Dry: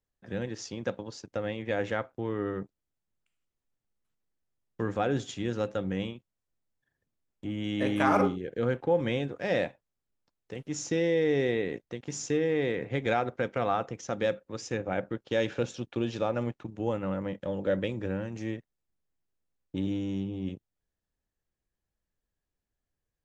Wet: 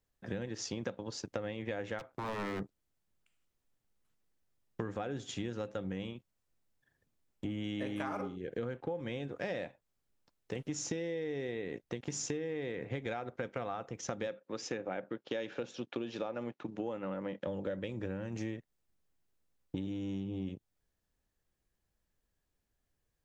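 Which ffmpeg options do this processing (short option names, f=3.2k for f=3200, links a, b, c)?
-filter_complex "[0:a]asplit=3[a][b][c];[a]afade=t=out:st=1.98:d=0.02[d];[b]aeval=exprs='0.0251*(abs(mod(val(0)/0.0251+3,4)-2)-1)':c=same,afade=t=in:st=1.98:d=0.02,afade=t=out:st=2.59:d=0.02[e];[c]afade=t=in:st=2.59:d=0.02[f];[d][e][f]amix=inputs=3:normalize=0,asettb=1/sr,asplit=3[g][h][i];[g]atrim=end=14.274[j];[h]atrim=start=14.27:end=17.47,asetpts=PTS-STARTPTS,afade=t=in:d=0.004:c=qsin,afade=t=out:st=3.196:d=0.004:c=qsin,highpass=200,lowpass=5.7k[k];[i]atrim=start=17.466[l];[j][k]acrossfade=d=0.004:c1=hsin:c2=qsin[m];[m][l]acrossfade=d=0.004:c1=qsin:c2=hsin,acompressor=threshold=-38dB:ratio=16,volume=4dB"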